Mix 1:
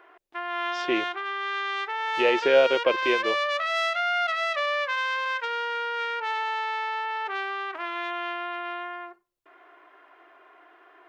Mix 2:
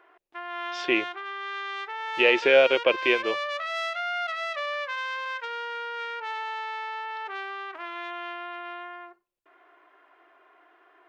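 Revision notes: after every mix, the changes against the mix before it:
speech: add peaking EQ 2.4 kHz +7.5 dB 1.1 oct; background -4.5 dB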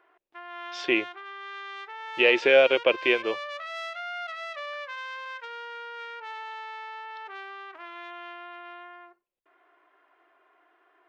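background -5.5 dB

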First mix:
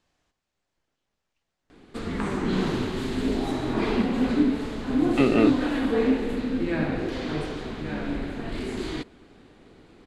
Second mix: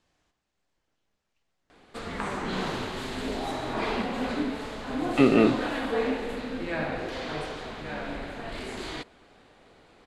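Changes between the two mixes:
background: add resonant low shelf 450 Hz -7 dB, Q 1.5; reverb: on, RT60 0.95 s

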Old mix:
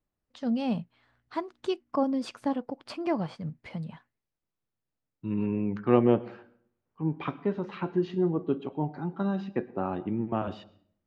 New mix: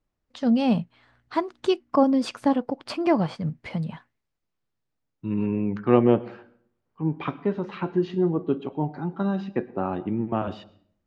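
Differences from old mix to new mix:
first voice +7.5 dB; second voice +3.5 dB

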